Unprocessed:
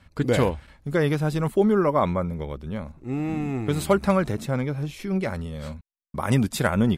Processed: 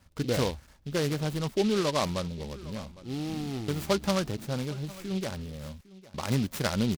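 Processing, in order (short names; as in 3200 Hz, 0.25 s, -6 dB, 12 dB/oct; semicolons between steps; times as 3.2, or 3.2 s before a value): on a send: echo 0.806 s -19.5 dB; on the sum: noise-modulated delay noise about 3400 Hz, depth 0.088 ms; gain -6.5 dB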